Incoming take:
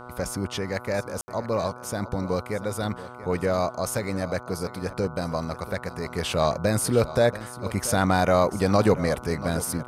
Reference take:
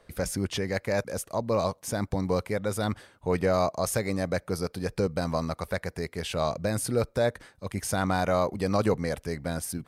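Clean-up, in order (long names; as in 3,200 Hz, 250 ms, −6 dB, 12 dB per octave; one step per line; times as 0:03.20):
hum removal 123.2 Hz, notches 12
ambience match 0:01.21–0:01.28
echo removal 684 ms −15.5 dB
level 0 dB, from 0:06.06 −5 dB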